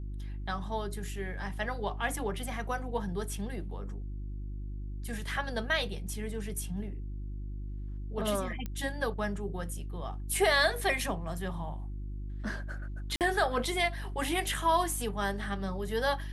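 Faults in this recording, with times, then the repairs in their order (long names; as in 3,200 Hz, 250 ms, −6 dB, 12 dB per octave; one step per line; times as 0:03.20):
mains hum 50 Hz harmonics 7 −38 dBFS
0:08.66: click −23 dBFS
0:13.16–0:13.21: drop-out 48 ms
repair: click removal
hum removal 50 Hz, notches 7
repair the gap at 0:13.16, 48 ms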